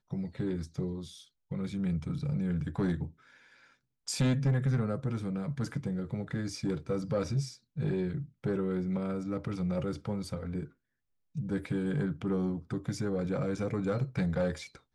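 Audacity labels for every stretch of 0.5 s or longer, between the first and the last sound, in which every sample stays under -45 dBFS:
3.110000	4.070000	silence
10.680000	11.350000	silence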